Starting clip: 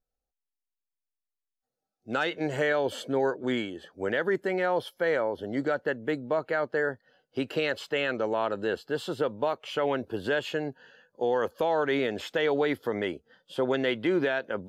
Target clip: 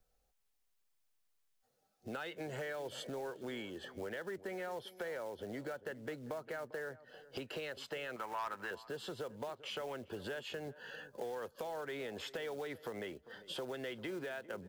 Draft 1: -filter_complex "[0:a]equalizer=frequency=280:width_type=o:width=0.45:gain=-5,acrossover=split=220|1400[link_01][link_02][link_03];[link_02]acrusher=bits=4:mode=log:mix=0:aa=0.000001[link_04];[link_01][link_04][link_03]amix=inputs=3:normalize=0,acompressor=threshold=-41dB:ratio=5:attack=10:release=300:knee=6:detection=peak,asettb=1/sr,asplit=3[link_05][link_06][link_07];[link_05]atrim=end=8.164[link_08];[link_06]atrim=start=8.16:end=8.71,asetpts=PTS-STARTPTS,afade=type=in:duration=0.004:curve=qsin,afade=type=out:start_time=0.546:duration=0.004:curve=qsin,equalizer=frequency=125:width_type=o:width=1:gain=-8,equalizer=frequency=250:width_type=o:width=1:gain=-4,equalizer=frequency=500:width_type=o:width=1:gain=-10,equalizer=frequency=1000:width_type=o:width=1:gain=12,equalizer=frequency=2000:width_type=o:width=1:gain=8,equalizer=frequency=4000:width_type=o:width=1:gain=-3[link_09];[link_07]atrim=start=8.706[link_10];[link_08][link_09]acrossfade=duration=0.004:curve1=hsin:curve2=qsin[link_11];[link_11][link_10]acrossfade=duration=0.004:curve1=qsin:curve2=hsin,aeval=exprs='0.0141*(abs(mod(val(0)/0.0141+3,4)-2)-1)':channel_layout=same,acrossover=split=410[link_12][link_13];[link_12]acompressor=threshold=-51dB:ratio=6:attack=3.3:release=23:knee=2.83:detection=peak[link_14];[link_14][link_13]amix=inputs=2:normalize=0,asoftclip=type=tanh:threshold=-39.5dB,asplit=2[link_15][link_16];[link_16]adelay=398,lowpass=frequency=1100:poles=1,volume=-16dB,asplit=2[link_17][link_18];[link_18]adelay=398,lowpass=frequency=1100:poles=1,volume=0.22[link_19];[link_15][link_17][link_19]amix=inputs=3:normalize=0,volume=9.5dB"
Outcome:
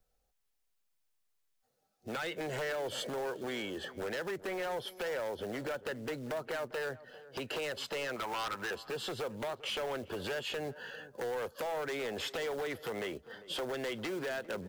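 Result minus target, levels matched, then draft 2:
downward compressor: peak gain reduction −9 dB
-filter_complex "[0:a]equalizer=frequency=280:width_type=o:width=0.45:gain=-5,acrossover=split=220|1400[link_01][link_02][link_03];[link_02]acrusher=bits=4:mode=log:mix=0:aa=0.000001[link_04];[link_01][link_04][link_03]amix=inputs=3:normalize=0,acompressor=threshold=-52dB:ratio=5:attack=10:release=300:knee=6:detection=peak,asettb=1/sr,asplit=3[link_05][link_06][link_07];[link_05]atrim=end=8.164[link_08];[link_06]atrim=start=8.16:end=8.71,asetpts=PTS-STARTPTS,afade=type=in:duration=0.004:curve=qsin,afade=type=out:start_time=0.546:duration=0.004:curve=qsin,equalizer=frequency=125:width_type=o:width=1:gain=-8,equalizer=frequency=250:width_type=o:width=1:gain=-4,equalizer=frequency=500:width_type=o:width=1:gain=-10,equalizer=frequency=1000:width_type=o:width=1:gain=12,equalizer=frequency=2000:width_type=o:width=1:gain=8,equalizer=frequency=4000:width_type=o:width=1:gain=-3[link_09];[link_07]atrim=start=8.706[link_10];[link_08][link_09]acrossfade=duration=0.004:curve1=hsin:curve2=qsin[link_11];[link_11][link_10]acrossfade=duration=0.004:curve1=qsin:curve2=hsin,aeval=exprs='0.0141*(abs(mod(val(0)/0.0141+3,4)-2)-1)':channel_layout=same,acrossover=split=410[link_12][link_13];[link_12]acompressor=threshold=-51dB:ratio=6:attack=3.3:release=23:knee=2.83:detection=peak[link_14];[link_14][link_13]amix=inputs=2:normalize=0,asoftclip=type=tanh:threshold=-39.5dB,asplit=2[link_15][link_16];[link_16]adelay=398,lowpass=frequency=1100:poles=1,volume=-16dB,asplit=2[link_17][link_18];[link_18]adelay=398,lowpass=frequency=1100:poles=1,volume=0.22[link_19];[link_15][link_17][link_19]amix=inputs=3:normalize=0,volume=9.5dB"

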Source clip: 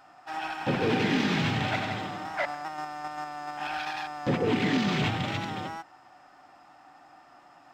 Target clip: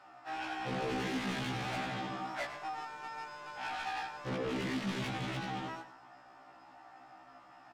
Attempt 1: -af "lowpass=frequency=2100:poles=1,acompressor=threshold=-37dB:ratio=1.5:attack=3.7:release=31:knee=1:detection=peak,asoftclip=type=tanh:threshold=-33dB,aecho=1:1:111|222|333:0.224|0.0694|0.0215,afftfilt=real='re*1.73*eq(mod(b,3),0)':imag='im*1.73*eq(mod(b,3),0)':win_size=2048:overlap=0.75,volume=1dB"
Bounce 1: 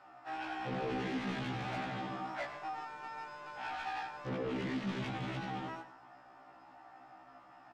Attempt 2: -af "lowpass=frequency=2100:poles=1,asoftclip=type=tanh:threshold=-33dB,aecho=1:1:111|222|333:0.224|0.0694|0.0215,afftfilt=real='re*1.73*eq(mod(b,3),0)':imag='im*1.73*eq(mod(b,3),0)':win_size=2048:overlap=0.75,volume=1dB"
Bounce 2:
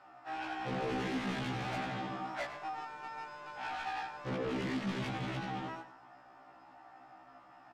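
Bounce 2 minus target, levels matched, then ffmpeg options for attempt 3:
4,000 Hz band −2.5 dB
-af "lowpass=frequency=4900:poles=1,asoftclip=type=tanh:threshold=-33dB,aecho=1:1:111|222|333:0.224|0.0694|0.0215,afftfilt=real='re*1.73*eq(mod(b,3),0)':imag='im*1.73*eq(mod(b,3),0)':win_size=2048:overlap=0.75,volume=1dB"

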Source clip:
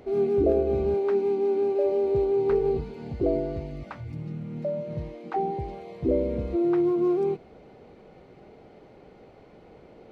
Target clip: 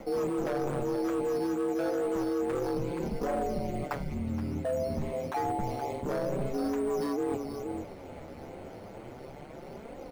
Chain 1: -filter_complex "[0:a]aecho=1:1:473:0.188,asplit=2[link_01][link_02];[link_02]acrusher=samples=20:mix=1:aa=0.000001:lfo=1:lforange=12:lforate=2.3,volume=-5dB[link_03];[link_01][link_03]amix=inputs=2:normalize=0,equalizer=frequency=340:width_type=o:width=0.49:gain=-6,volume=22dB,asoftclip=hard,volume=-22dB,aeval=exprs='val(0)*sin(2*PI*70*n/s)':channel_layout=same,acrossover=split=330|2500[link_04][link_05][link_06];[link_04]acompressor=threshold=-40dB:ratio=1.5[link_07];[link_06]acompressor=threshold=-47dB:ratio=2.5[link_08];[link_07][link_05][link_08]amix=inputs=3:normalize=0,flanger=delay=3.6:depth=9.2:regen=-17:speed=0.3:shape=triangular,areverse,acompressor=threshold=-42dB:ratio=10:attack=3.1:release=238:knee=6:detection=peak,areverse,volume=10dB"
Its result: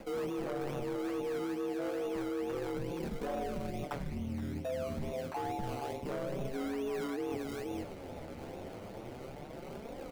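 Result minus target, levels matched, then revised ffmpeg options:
sample-and-hold swept by an LFO: distortion +11 dB; downward compressor: peak gain reduction +5.5 dB
-filter_complex "[0:a]aecho=1:1:473:0.188,asplit=2[link_01][link_02];[link_02]acrusher=samples=7:mix=1:aa=0.000001:lfo=1:lforange=4.2:lforate=2.3,volume=-5dB[link_03];[link_01][link_03]amix=inputs=2:normalize=0,equalizer=frequency=340:width_type=o:width=0.49:gain=-6,volume=22dB,asoftclip=hard,volume=-22dB,aeval=exprs='val(0)*sin(2*PI*70*n/s)':channel_layout=same,acrossover=split=330|2500[link_04][link_05][link_06];[link_04]acompressor=threshold=-40dB:ratio=1.5[link_07];[link_06]acompressor=threshold=-47dB:ratio=2.5[link_08];[link_07][link_05][link_08]amix=inputs=3:normalize=0,flanger=delay=3.6:depth=9.2:regen=-17:speed=0.3:shape=triangular,areverse,acompressor=threshold=-35.5dB:ratio=10:attack=3.1:release=238:knee=6:detection=peak,areverse,volume=10dB"

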